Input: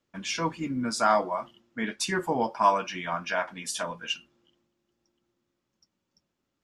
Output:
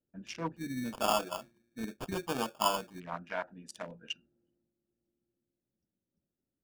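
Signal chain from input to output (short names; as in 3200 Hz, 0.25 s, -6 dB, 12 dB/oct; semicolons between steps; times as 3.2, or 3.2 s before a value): Wiener smoothing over 41 samples; 0.56–3 sample-rate reducer 2000 Hz, jitter 0%; gain -6 dB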